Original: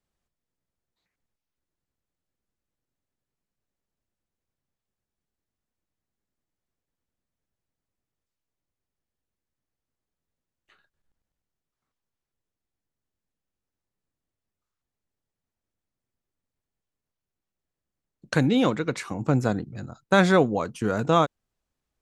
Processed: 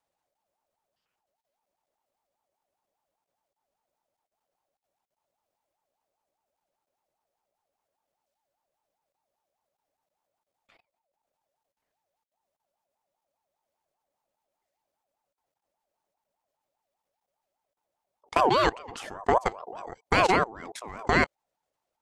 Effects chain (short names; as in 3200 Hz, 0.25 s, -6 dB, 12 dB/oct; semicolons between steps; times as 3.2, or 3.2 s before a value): level quantiser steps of 22 dB; dynamic EQ 420 Hz, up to -7 dB, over -37 dBFS, Q 0.98; ring modulator with a swept carrier 730 Hz, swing 25%, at 5 Hz; gain +7 dB